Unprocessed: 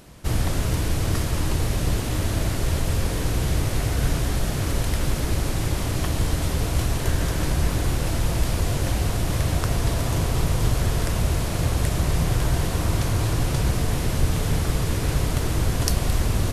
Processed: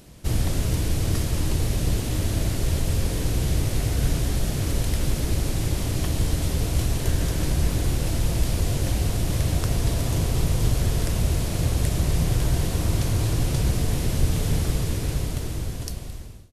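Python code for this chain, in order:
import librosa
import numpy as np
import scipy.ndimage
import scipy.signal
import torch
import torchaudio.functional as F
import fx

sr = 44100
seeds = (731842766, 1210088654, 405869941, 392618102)

y = fx.fade_out_tail(x, sr, length_s=1.91)
y = fx.peak_eq(y, sr, hz=1200.0, db=-6.5, octaves=1.8)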